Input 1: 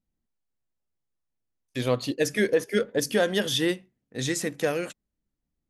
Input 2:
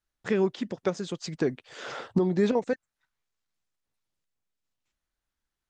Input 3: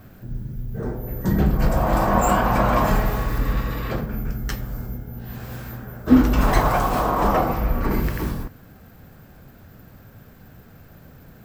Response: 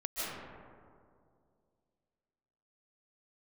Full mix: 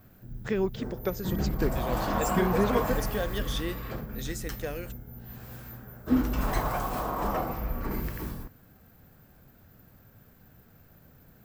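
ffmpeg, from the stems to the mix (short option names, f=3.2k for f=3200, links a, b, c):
-filter_complex "[0:a]volume=-9.5dB[a];[1:a]adelay=200,volume=-3dB[b];[2:a]highshelf=f=10k:g=8.5,volume=-10.5dB[c];[a][b][c]amix=inputs=3:normalize=0"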